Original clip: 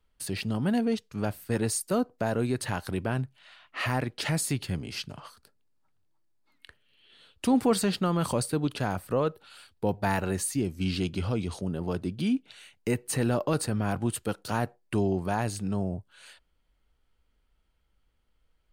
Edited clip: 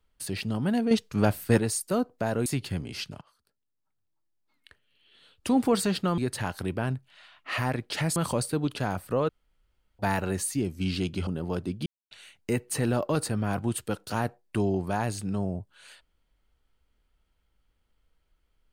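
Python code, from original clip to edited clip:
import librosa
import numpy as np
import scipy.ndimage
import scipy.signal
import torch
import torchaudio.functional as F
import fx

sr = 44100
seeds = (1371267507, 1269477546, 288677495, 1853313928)

y = fx.edit(x, sr, fx.clip_gain(start_s=0.91, length_s=0.68, db=7.0),
    fx.move(start_s=2.46, length_s=1.98, to_s=8.16),
    fx.fade_in_from(start_s=5.19, length_s=2.42, floor_db=-19.5),
    fx.room_tone_fill(start_s=9.29, length_s=0.7),
    fx.cut(start_s=11.27, length_s=0.38),
    fx.silence(start_s=12.24, length_s=0.25), tone=tone)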